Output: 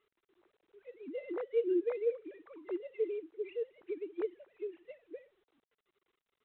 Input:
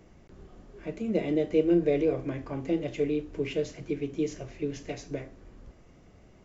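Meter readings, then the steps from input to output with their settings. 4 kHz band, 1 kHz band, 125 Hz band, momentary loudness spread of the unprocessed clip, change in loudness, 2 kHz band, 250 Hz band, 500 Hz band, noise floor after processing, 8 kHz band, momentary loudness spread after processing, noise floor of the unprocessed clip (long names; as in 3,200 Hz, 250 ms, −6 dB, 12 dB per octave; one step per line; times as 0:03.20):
below −15 dB, −11.5 dB, below −40 dB, 15 LU, −7.5 dB, −12.0 dB, −13.0 dB, −6.5 dB, below −85 dBFS, can't be measured, 20 LU, −56 dBFS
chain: three sine waves on the formant tracks
level −8.5 dB
G.726 32 kbit/s 8,000 Hz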